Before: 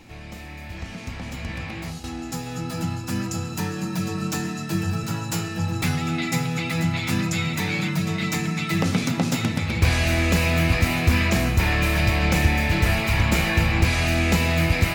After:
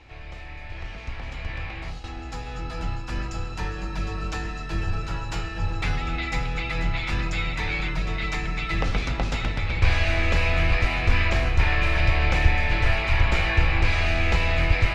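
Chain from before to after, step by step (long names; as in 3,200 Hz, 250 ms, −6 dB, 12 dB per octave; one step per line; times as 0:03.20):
sub-octave generator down 2 octaves, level 0 dB
low-pass filter 3,600 Hz 12 dB per octave
parametric band 210 Hz −14 dB 1.4 octaves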